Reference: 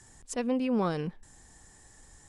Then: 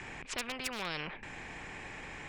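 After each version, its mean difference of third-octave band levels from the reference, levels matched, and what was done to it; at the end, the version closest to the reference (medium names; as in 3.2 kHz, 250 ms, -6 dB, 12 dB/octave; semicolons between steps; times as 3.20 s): 16.0 dB: resonant low-pass 2.4 kHz, resonance Q 8.4; peaking EQ 150 Hz +4.5 dB 0.41 oct; hard clipper -19.5 dBFS, distortion -28 dB; spectrum-flattening compressor 4:1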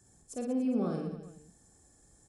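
5.5 dB: peaking EQ 2.3 kHz -12 dB 2.7 oct; vibrato 11 Hz 14 cents; comb of notches 950 Hz; on a send: reverse bouncing-ball echo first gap 50 ms, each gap 1.25×, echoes 5; on the sum: trim -3.5 dB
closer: second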